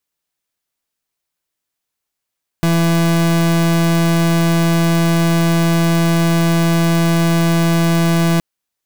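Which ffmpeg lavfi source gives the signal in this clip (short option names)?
-f lavfi -i "aevalsrc='0.211*(2*lt(mod(167*t,1),0.37)-1)':d=5.77:s=44100"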